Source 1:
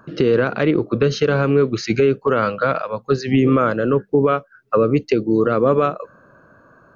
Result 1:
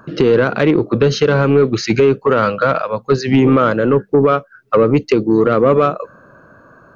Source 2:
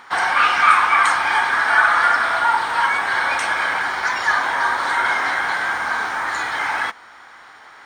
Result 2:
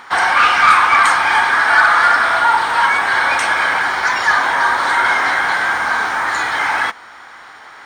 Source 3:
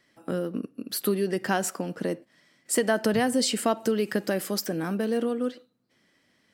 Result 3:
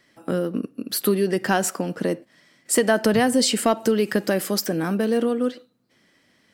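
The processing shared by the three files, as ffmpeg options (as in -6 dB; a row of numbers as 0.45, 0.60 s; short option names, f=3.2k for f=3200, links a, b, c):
-af "acontrast=61,volume=-1dB"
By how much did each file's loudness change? +4.0, +4.5, +5.0 LU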